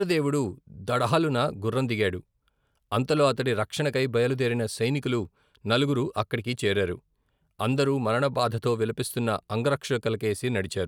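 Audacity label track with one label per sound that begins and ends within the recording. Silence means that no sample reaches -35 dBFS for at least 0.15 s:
0.800000	2.200000	sound
2.920000	5.260000	sound
5.650000	6.950000	sound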